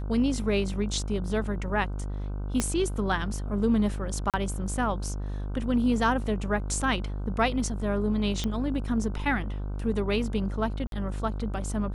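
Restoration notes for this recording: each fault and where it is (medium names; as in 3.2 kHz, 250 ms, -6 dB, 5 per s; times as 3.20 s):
buzz 50 Hz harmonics 31 -32 dBFS
2.60 s: pop -11 dBFS
4.30–4.34 s: dropout 37 ms
8.44 s: pop -16 dBFS
10.87–10.92 s: dropout 52 ms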